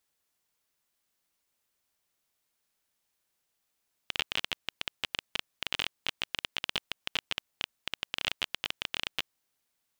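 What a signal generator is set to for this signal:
Geiger counter clicks 17 per second −12 dBFS 5.26 s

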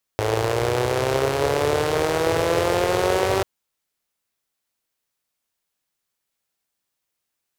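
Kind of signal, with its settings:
pulse-train model of a four-cylinder engine, changing speed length 3.24 s, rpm 3,200, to 5,800, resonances 100/440 Hz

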